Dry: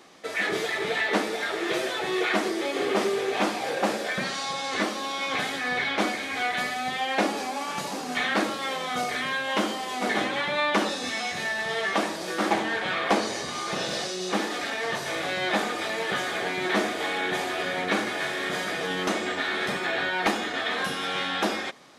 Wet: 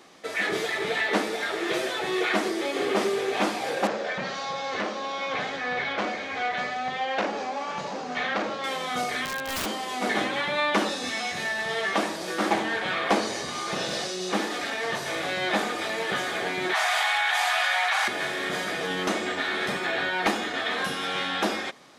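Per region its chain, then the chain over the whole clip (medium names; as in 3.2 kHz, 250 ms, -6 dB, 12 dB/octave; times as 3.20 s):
3.87–8.64 s: FFT filter 190 Hz 0 dB, 300 Hz -4 dB, 520 Hz +4 dB, 820 Hz +1 dB, 1.3 kHz 0 dB, 6.5 kHz -6 dB, 11 kHz -28 dB + transformer saturation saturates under 1.9 kHz
9.25–9.66 s: treble shelf 2.4 kHz -10 dB + integer overflow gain 24 dB
16.73–18.08 s: elliptic high-pass 740 Hz, stop band 80 dB + level flattener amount 100%
whole clip: none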